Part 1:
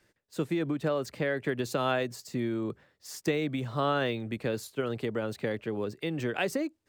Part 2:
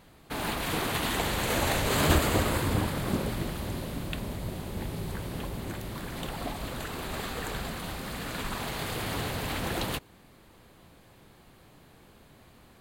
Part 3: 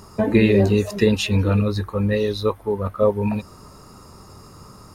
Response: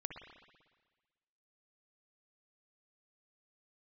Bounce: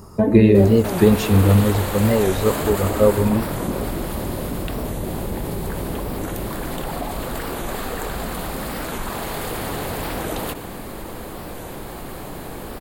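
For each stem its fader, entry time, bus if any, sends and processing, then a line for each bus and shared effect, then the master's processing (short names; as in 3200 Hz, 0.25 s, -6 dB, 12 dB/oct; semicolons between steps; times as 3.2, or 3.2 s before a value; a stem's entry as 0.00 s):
-12.0 dB, 0.00 s, no send, dry
-1.0 dB, 0.55 s, send -2 dB, bell 110 Hz -9 dB 2.4 oct; notch 6000 Hz, Q 28; fast leveller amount 70%
+1.0 dB, 0.00 s, send -4.5 dB, dry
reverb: on, RT60 1.4 s, pre-delay 55 ms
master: bell 3200 Hz -10 dB 2.9 oct; record warp 45 rpm, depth 160 cents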